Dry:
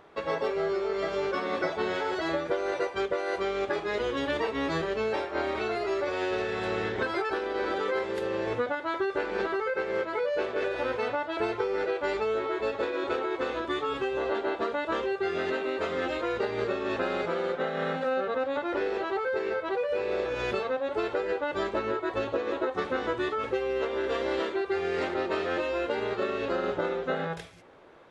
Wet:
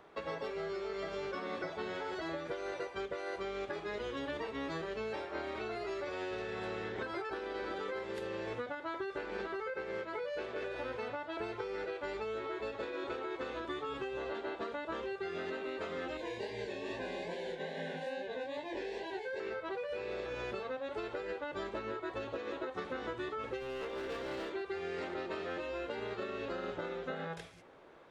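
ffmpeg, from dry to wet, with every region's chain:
-filter_complex "[0:a]asettb=1/sr,asplit=3[s0][s1][s2];[s0]atrim=end=16.174[s3];[s1]atrim=start=16.17:end=19.4,asetpts=PTS-STARTPTS,afade=t=in:d=0.004:c=qsin,afade=t=out:st=3.226:d=0.004:c=qsin,asuperstop=centerf=1300:order=12:qfactor=3.1,highshelf=f=4200:g=10,flanger=delay=18.5:depth=7.2:speed=2.4[s4];[s2]atrim=start=19.396[s5];[s3][s4]acrossfade=d=0.004:c1=hsin:c2=qsin[s6];[s6][s5]acrossfade=d=0.004:c1=qsin:c2=hsin,asettb=1/sr,asplit=3[s7][s8][s9];[s7]atrim=end=23.604[s10];[s8]atrim=start=23.6:end=24.53,asetpts=PTS-STARTPTS,afade=t=in:d=0.004:c=qsin,afade=t=out:st=0.926:d=0.004:c=qsin,asoftclip=type=hard:threshold=0.0422,asplit=2[s11][s12];[s12]adelay=24,volume=0.266[s13];[s11][s13]amix=inputs=2:normalize=0,atrim=end_sample=41013[s14];[s9]atrim=start=24.526[s15];[s10][s14]acrossfade=d=0.004:c1=hsin:c2=qsin[s16];[s16][s15]acrossfade=d=0.004:c1=qsin:c2=hsin,acrossover=split=200|1600[s17][s18][s19];[s17]acompressor=threshold=0.00562:ratio=4[s20];[s18]acompressor=threshold=0.0178:ratio=4[s21];[s19]acompressor=threshold=0.00631:ratio=4[s22];[s20][s21][s22]amix=inputs=3:normalize=0,equalizer=f=84:t=o:w=0.37:g=-5,volume=0.631"

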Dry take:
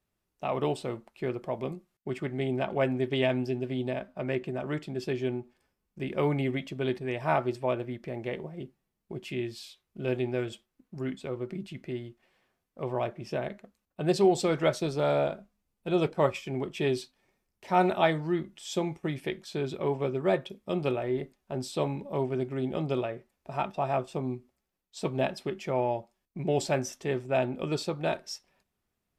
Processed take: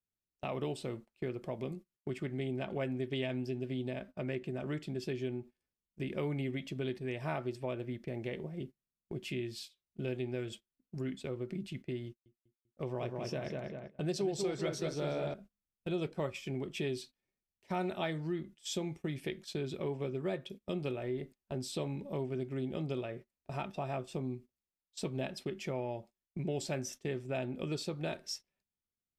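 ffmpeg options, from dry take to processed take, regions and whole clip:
-filter_complex "[0:a]asettb=1/sr,asplit=3[s0][s1][s2];[s0]atrim=end=12.064[s3];[s1]atrim=start=12.06:end=15.34,asetpts=PTS-STARTPTS,afade=t=in:d=0.004:c=qsin,afade=t=out:st=3.276:d=0.004:c=qsin,agate=range=0.0224:threshold=0.00224:ratio=3:release=100:detection=peak,equalizer=f=5800:w=4:g=6.5,asplit=2[s4][s5];[s5]adelay=196,lowpass=f=2700:p=1,volume=0.631,asplit=2[s6][s7];[s7]adelay=196,lowpass=f=2700:p=1,volume=0.45,asplit=2[s8][s9];[s9]adelay=196,lowpass=f=2700:p=1,volume=0.45,asplit=2[s10][s11];[s11]adelay=196,lowpass=f=2700:p=1,volume=0.45,asplit=2[s12][s13];[s13]adelay=196,lowpass=f=2700:p=1,volume=0.45,asplit=2[s14][s15];[s15]adelay=196,lowpass=f=2700:p=1,volume=0.45[s16];[s4][s6][s8][s10][s12][s14][s16]amix=inputs=7:normalize=0,atrim=end_sample=144648[s17];[s2]atrim=start=15.336[s18];[s3][s17]acrossfade=d=0.004:c1=hsin:c2=qsin[s19];[s19][s18]acrossfade=d=0.004:c1=qsin:c2=hsin,agate=range=0.141:threshold=0.00631:ratio=16:detection=peak,equalizer=f=910:t=o:w=1.6:g=-7.5,acompressor=threshold=0.0141:ratio=2.5,volume=1.12"

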